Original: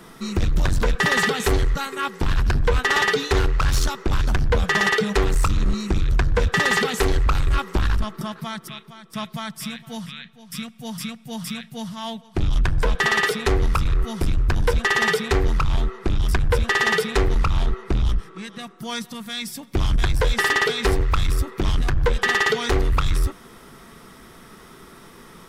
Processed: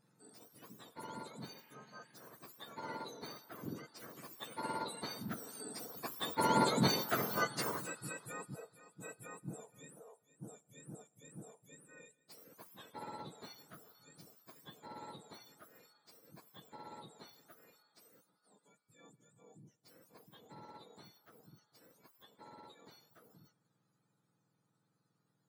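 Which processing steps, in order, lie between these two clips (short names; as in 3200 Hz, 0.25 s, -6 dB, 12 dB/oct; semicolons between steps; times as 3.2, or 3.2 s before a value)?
spectrum mirrored in octaves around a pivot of 1300 Hz; Doppler pass-by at 7.23, 8 m/s, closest 3.9 m; spectral repair 1.54–2.21, 1600–3300 Hz both; gain -5 dB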